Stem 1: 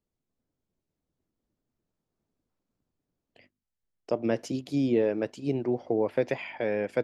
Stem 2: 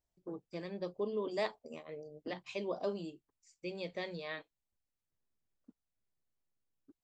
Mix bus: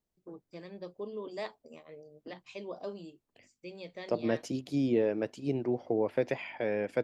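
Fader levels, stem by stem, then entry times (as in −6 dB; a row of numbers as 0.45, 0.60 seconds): −3.0, −3.5 decibels; 0.00, 0.00 seconds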